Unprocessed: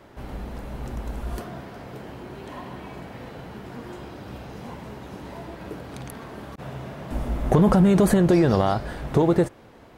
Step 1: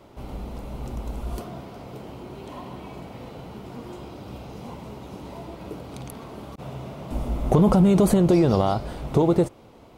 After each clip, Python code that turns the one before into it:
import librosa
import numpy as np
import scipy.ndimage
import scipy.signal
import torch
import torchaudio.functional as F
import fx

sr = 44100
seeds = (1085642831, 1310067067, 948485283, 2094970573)

y = fx.peak_eq(x, sr, hz=1700.0, db=-12.0, octaves=0.4)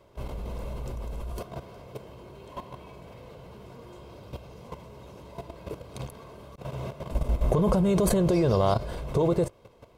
y = x + 0.5 * np.pad(x, (int(1.9 * sr / 1000.0), 0))[:len(x)]
y = fx.level_steps(y, sr, step_db=12)
y = F.gain(torch.from_numpy(y), 2.0).numpy()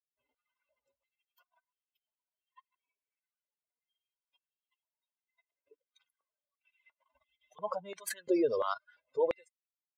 y = fx.bin_expand(x, sr, power=3.0)
y = fx.filter_held_highpass(y, sr, hz=2.9, low_hz=420.0, high_hz=3100.0)
y = F.gain(torch.from_numpy(y), -5.0).numpy()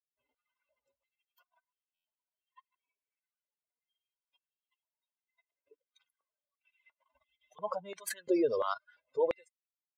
y = fx.buffer_glitch(x, sr, at_s=(1.94,), block=512, repeats=8)